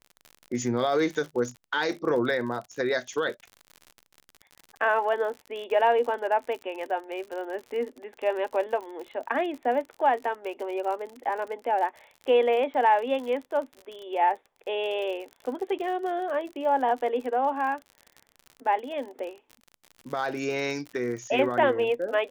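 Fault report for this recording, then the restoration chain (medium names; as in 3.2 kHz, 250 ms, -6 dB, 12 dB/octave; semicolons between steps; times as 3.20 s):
crackle 58 per s -35 dBFS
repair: de-click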